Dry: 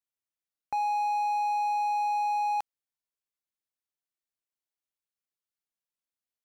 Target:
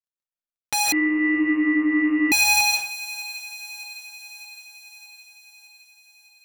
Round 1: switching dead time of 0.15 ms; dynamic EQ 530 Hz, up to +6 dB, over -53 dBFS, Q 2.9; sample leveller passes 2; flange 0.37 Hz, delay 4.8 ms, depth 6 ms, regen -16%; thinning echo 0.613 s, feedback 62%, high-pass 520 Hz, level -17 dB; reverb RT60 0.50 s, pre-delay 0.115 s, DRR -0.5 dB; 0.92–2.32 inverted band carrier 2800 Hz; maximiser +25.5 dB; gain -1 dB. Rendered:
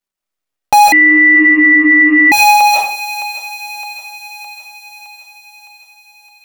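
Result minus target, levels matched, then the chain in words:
switching dead time: distortion -31 dB
switching dead time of 0.53 ms; dynamic EQ 530 Hz, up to +6 dB, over -53 dBFS, Q 2.9; sample leveller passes 2; flange 0.37 Hz, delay 4.8 ms, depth 6 ms, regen -16%; thinning echo 0.613 s, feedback 62%, high-pass 520 Hz, level -17 dB; reverb RT60 0.50 s, pre-delay 0.115 s, DRR -0.5 dB; 0.92–2.32 inverted band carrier 2800 Hz; maximiser +25.5 dB; gain -1 dB

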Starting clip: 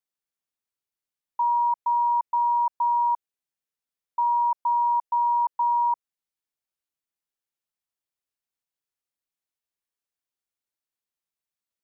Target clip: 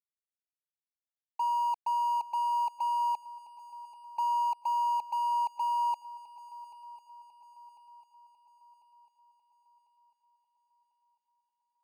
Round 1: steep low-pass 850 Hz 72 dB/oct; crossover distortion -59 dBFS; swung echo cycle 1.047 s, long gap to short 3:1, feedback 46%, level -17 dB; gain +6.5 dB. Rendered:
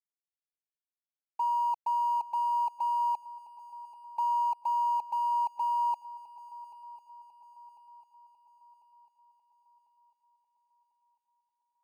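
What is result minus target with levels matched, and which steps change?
crossover distortion: distortion -7 dB
change: crossover distortion -52 dBFS

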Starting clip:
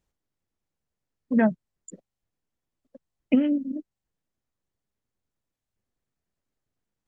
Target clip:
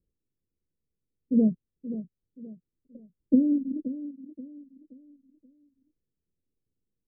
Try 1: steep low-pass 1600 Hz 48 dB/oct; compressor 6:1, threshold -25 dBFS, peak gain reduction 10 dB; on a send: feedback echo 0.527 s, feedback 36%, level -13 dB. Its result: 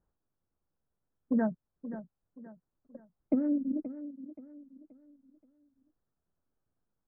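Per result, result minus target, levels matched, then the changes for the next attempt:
compressor: peak gain reduction +10 dB; 500 Hz band +4.5 dB
remove: compressor 6:1, threshold -25 dBFS, peak gain reduction 10 dB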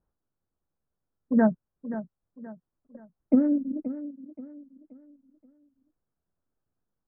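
500 Hz band +5.0 dB
change: steep low-pass 500 Hz 48 dB/oct

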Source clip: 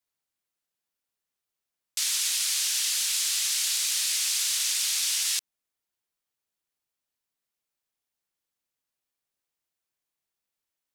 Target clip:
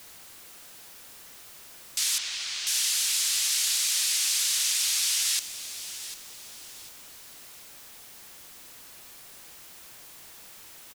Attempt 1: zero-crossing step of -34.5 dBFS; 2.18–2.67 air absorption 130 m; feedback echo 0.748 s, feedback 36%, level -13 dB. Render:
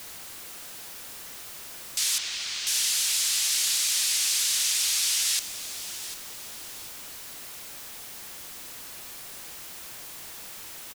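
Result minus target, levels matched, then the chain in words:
zero-crossing step: distortion +6 dB
zero-crossing step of -41 dBFS; 2.18–2.67 air absorption 130 m; feedback echo 0.748 s, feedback 36%, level -13 dB

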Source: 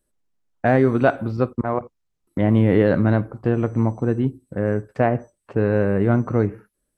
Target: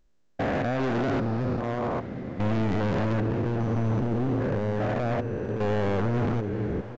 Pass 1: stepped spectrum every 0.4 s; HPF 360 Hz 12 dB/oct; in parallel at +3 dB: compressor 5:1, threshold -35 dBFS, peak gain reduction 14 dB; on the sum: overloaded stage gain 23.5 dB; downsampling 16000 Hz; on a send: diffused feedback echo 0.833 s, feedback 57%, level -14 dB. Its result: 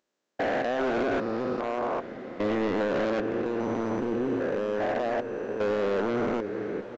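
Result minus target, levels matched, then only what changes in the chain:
500 Hz band +3.0 dB
remove: HPF 360 Hz 12 dB/oct

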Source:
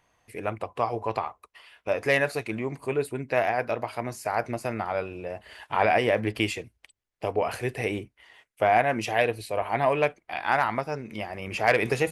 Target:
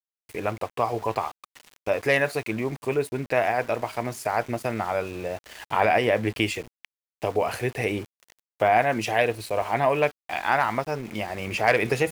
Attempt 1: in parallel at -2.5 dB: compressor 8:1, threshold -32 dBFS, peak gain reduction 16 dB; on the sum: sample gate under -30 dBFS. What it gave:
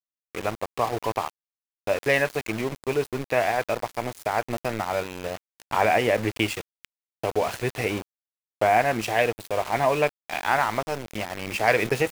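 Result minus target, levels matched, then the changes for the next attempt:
sample gate: distortion +11 dB
change: sample gate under -39.5 dBFS

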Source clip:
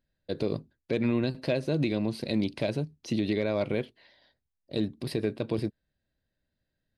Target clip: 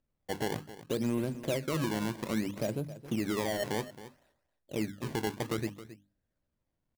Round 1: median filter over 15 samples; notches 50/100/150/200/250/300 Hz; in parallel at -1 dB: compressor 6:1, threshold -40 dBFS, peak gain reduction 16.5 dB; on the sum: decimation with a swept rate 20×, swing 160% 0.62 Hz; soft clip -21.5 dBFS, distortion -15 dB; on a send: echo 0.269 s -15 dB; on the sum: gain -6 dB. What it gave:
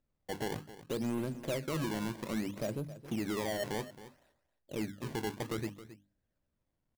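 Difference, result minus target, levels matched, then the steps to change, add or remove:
soft clip: distortion +12 dB; compressor: peak gain reduction +7 dB
change: compressor 6:1, threshold -31.5 dBFS, peak gain reduction 9.5 dB; change: soft clip -12 dBFS, distortion -27 dB

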